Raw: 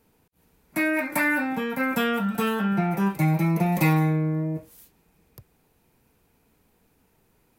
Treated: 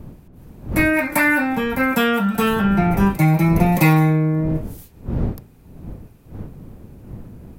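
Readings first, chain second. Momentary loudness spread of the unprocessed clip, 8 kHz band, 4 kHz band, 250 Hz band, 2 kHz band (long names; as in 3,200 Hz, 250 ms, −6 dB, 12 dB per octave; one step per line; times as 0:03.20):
7 LU, +6.5 dB, +6.5 dB, +6.5 dB, +6.5 dB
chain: wind on the microphone 180 Hz −36 dBFS
level +6.5 dB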